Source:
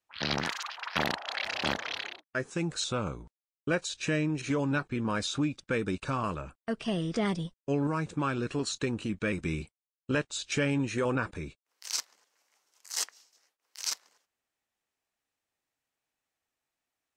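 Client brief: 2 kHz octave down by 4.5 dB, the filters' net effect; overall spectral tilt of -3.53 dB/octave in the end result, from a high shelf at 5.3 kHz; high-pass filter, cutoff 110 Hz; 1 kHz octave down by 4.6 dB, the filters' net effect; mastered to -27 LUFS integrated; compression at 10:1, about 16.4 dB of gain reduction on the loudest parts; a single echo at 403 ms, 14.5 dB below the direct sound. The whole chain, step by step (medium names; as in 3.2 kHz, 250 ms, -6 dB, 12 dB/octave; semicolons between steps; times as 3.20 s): high-pass 110 Hz; peaking EQ 1 kHz -4.5 dB; peaking EQ 2 kHz -5.5 dB; treble shelf 5.3 kHz +7 dB; compression 10:1, threshold -41 dBFS; delay 403 ms -14.5 dB; trim +18.5 dB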